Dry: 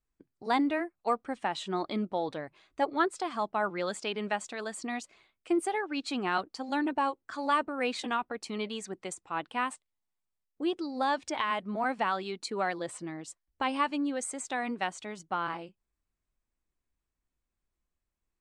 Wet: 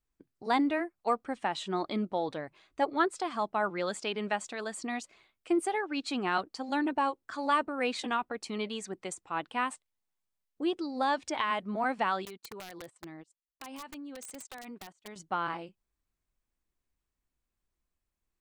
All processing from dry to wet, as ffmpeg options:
-filter_complex "[0:a]asettb=1/sr,asplit=3[a][b][c];[a]atrim=end=12.254[d];[b]atrim=start=12.25:end=15.16,asetpts=PTS-STARTPTS,afade=t=in:d=0.004:c=qsin,afade=t=out:st=2.906:d=0.004:c=qsin,agate=range=-27dB:threshold=-41dB:ratio=16:release=100:detection=peak,acompressor=threshold=-40dB:ratio=16:attack=3.2:release=140:knee=1:detection=peak,aeval=exprs='(mod(66.8*val(0)+1,2)-1)/66.8':c=same[e];[c]atrim=start=15.156[f];[d][e]acrossfade=d=0.004:c1=hsin:c2=qsin[g];[g][f]acrossfade=d=0.004:c1=qsin:c2=hsin"

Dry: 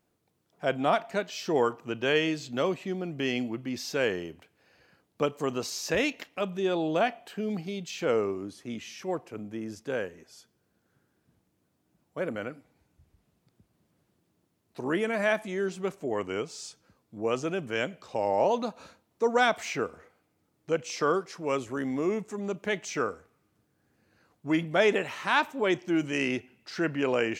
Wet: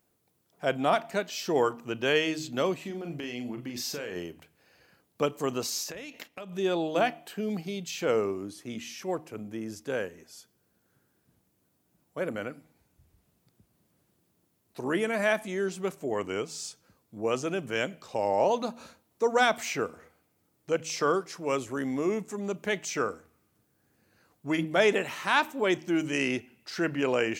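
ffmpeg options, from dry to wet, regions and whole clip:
-filter_complex "[0:a]asettb=1/sr,asplit=3[a][b][c];[a]atrim=end=2.794[d];[b]atrim=start=2.79:end=4.16,asetpts=PTS-STARTPTS,afade=t=in:d=0.004:c=qsin,afade=t=out:st=1.366:d=0.004:c=qsin,acompressor=threshold=-32dB:ratio=12:attack=3.2:release=140:knee=1:detection=peak,asplit=2[e][f];[f]adelay=41,volume=-7dB[g];[e][g]amix=inputs=2:normalize=0,atrim=end_sample=60417[h];[c]atrim=start=4.156[i];[d][h]acrossfade=d=0.004:c1=hsin:c2=qsin[j];[j][i]acrossfade=d=0.004:c1=qsin:c2=hsin,asettb=1/sr,asplit=3[k][l][m];[k]atrim=end=5.834[n];[l]atrim=start=5.83:end=6.53,asetpts=PTS-STARTPTS,afade=t=in:d=0.004:c=qsin,afade=t=out:st=0.696:d=0.004:c=qsin,agate=range=-6dB:threshold=-53dB:ratio=16:release=100:detection=peak,acompressor=threshold=-36dB:ratio=20:attack=3.2:release=140:knee=1:detection=peak[o];[m]atrim=start=6.526[p];[n][o]acrossfade=d=0.004:c1=hsin:c2=qsin[q];[q][p]acrossfade=d=0.004:c1=qsin:c2=hsin,highshelf=f=8.7k:g=11,bandreject=f=78.41:t=h:w=4,bandreject=f=156.82:t=h:w=4,bandreject=f=235.23:t=h:w=4,bandreject=f=313.64:t=h:w=4"

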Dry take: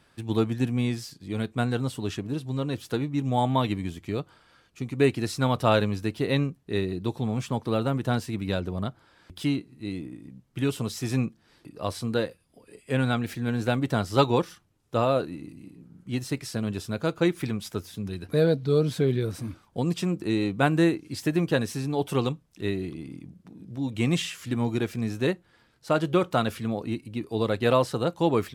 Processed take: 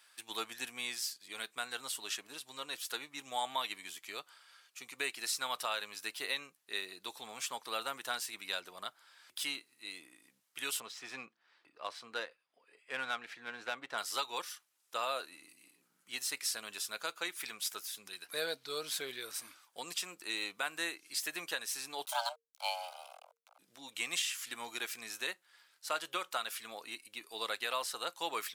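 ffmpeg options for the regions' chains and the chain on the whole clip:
-filter_complex "[0:a]asettb=1/sr,asplit=3[a][b][c];[a]atrim=end=10.804[d];[b]atrim=start=10.8:end=13.98,asetpts=PTS-STARTPTS,afade=t=in:d=0.004:c=qsin,afade=t=out:st=3.176:d=0.004:c=qsin,highshelf=f=3.6k:g=-11,adynamicsmooth=sensitivity=6:basefreq=4.4k[e];[c]atrim=start=13.976[f];[d][e]acrossfade=d=0.004:c1=hsin:c2=qsin[g];[g][f]acrossfade=d=0.004:c1=qsin:c2=hsin,asettb=1/sr,asplit=3[h][i][j];[h]atrim=end=22.054[k];[i]atrim=start=22.05:end=23.59,asetpts=PTS-STARTPTS,afade=t=in:d=0.004:c=qsin,afade=t=out:st=1.536:d=0.004:c=qsin,aeval=exprs='sgn(val(0))*max(abs(val(0))-0.00631,0)':c=same,afreqshift=460,asuperstop=centerf=1800:order=4:qfactor=3.9[l];[j]atrim=start=23.586[m];[k][l]acrossfade=d=0.004:c1=hsin:c2=qsin[n];[n][m]acrossfade=d=0.004:c1=qsin:c2=hsin,highpass=1.2k,highshelf=f=5.5k:g=9.5,alimiter=limit=-21dB:level=0:latency=1:release=325,volume=-1.5dB"

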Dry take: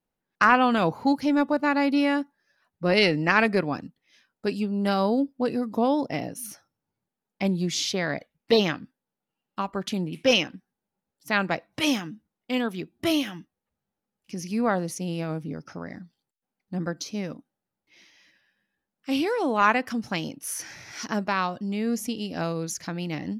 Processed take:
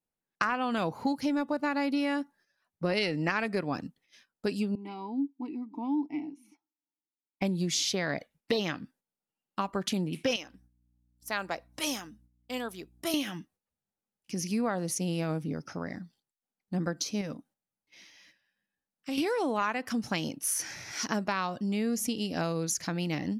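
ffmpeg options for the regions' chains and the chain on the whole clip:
-filter_complex "[0:a]asettb=1/sr,asplit=3[a][b][c];[a]atrim=end=4.754[d];[b]atrim=start=4.75:end=7.42,asetpts=PTS-STARTPTS,afade=t=in:d=0.004:c=qsin,afade=t=out:st=2.666:d=0.004:c=qsin,asplit=3[e][f][g];[e]bandpass=f=300:t=q:w=8,volume=0dB[h];[f]bandpass=f=870:t=q:w=8,volume=-6dB[i];[g]bandpass=f=2.24k:t=q:w=8,volume=-9dB[j];[h][i][j]amix=inputs=3:normalize=0,aecho=1:1:3.1:0.31,atrim=end_sample=117747[k];[c]atrim=start=7.416[l];[d][k]acrossfade=d=0.004:c1=hsin:c2=qsin[m];[m][l]acrossfade=d=0.004:c1=qsin:c2=hsin,asettb=1/sr,asplit=3[n][o][p];[n]atrim=end=10.364[q];[o]atrim=start=10.36:end=13.14,asetpts=PTS-STARTPTS,afade=t=in:d=0.004:c=qsin,afade=t=out:st=2.776:d=0.004:c=qsin,highpass=f=890:p=1,equalizer=f=2.5k:t=o:w=1.9:g=-8.5,aeval=exprs='val(0)+0.000891*(sin(2*PI*60*n/s)+sin(2*PI*2*60*n/s)/2+sin(2*PI*3*60*n/s)/3+sin(2*PI*4*60*n/s)/4+sin(2*PI*5*60*n/s)/5)':c=same[r];[p]atrim=start=13.136[s];[q][r]acrossfade=d=0.004:c1=hsin:c2=qsin[t];[t][s]acrossfade=d=0.004:c1=qsin:c2=hsin,asettb=1/sr,asplit=3[u][v][w];[u]atrim=end=17.214[x];[v]atrim=start=17.21:end=19.18,asetpts=PTS-STARTPTS,afade=t=in:d=0.004:c=qsin,afade=t=out:st=1.966:d=0.004:c=qsin,acompressor=threshold=-32dB:ratio=3:attack=3.2:release=140:knee=1:detection=peak,bandreject=f=360:w=7.1[y];[w]atrim=start=19.176[z];[x][y]acrossfade=d=0.004:c1=hsin:c2=qsin[aa];[aa][z]acrossfade=d=0.004:c1=qsin:c2=hsin,equalizer=f=8.9k:w=0.7:g=5,acompressor=threshold=-26dB:ratio=6,agate=range=-9dB:threshold=-60dB:ratio=16:detection=peak"

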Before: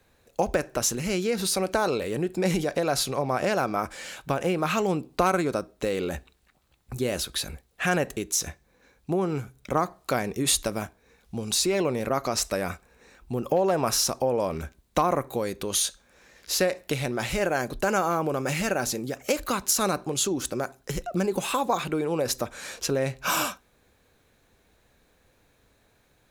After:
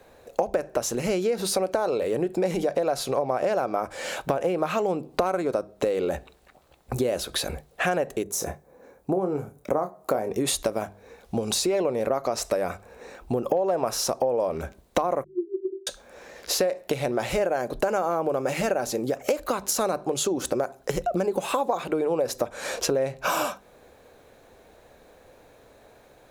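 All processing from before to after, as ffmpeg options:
-filter_complex "[0:a]asettb=1/sr,asplit=3[a][b][c];[a]atrim=end=8.234[d];[b]atrim=start=8.23:end=10.31,asetpts=PTS-STARTPTS,afade=t=in:d=0.004:c=qsin,afade=t=out:st=2.076:d=0.004:c=qsin,highpass=f=110:p=1,equalizer=f=3.4k:w=0.52:g=-12,asplit=2[e][f];[f]adelay=27,volume=-8dB[g];[e][g]amix=inputs=2:normalize=0,atrim=end_sample=91728[h];[c]atrim=start=10.306[i];[d][h]acrossfade=d=0.004:c1=hsin:c2=qsin[j];[j][i]acrossfade=d=0.004:c1=qsin:c2=hsin,asettb=1/sr,asplit=3[k][l][m];[k]atrim=end=15.244[n];[l]atrim=start=15.24:end=15.87,asetpts=PTS-STARTPTS,afade=t=in:d=0.004:c=qsin,afade=t=out:st=0.626:d=0.004:c=qsin,asuperpass=centerf=360:order=12:qfactor=6.4,aecho=1:1:3.1:0.89,atrim=end_sample=27783[o];[m]atrim=start=15.866[p];[n][o]acrossfade=d=0.004:c1=hsin:c2=qsin[q];[q][p]acrossfade=d=0.004:c1=qsin:c2=hsin,equalizer=f=590:t=o:w=1.7:g=11.5,bandreject=f=50:t=h:w=6,bandreject=f=100:t=h:w=6,bandreject=f=150:t=h:w=6,bandreject=f=200:t=h:w=6,acompressor=threshold=-29dB:ratio=4,volume=5dB"

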